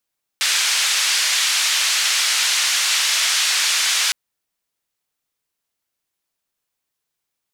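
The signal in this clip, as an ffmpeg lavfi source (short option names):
-f lavfi -i "anoisesrc=c=white:d=3.71:r=44100:seed=1,highpass=f=1700,lowpass=f=6100,volume=-6.9dB"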